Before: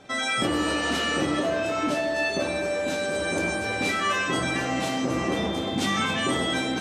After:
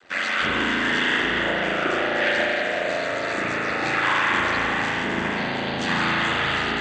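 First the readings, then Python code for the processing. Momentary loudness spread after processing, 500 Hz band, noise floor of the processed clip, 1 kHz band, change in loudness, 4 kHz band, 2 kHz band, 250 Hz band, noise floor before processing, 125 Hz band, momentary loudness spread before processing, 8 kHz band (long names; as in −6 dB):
5 LU, 0.0 dB, −27 dBFS, +4.0 dB, +3.0 dB, +2.0 dB, +6.5 dB, −1.5 dB, −29 dBFS, −0.5 dB, 3 LU, −6.5 dB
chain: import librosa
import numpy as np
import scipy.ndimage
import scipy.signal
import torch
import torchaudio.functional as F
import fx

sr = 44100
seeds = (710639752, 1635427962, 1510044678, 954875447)

y = fx.peak_eq(x, sr, hz=2000.0, db=9.5, octaves=1.5)
y = fx.notch(y, sr, hz=2300.0, q=10.0)
y = fx.noise_vocoder(y, sr, seeds[0], bands=16)
y = y * np.sin(2.0 * np.pi * 45.0 * np.arange(len(y)) / sr)
y = fx.rev_spring(y, sr, rt60_s=3.6, pass_ms=(36,), chirp_ms=50, drr_db=-4.5)
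y = y * librosa.db_to_amplitude(-3.0)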